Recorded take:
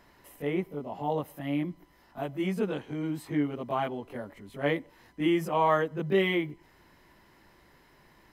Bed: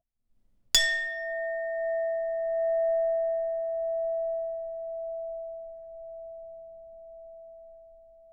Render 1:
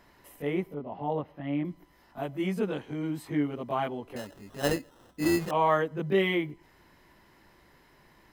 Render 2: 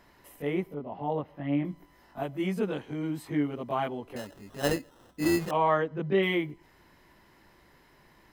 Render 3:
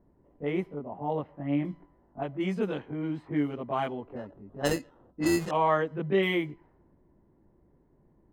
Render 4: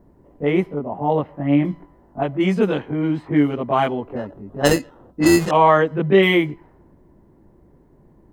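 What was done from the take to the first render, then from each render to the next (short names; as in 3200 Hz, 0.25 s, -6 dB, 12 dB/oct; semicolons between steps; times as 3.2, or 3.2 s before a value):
0.74–1.65 air absorption 280 m; 4.16–5.51 sample-rate reducer 2300 Hz
1.3–2.23 doubler 21 ms -6 dB; 5.57–6.23 air absorption 120 m
low-pass opened by the level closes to 390 Hz, open at -23.5 dBFS; dynamic EQ 7100 Hz, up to +4 dB, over -59 dBFS, Q 2.9
gain +11.5 dB; limiter -3 dBFS, peak gain reduction 2 dB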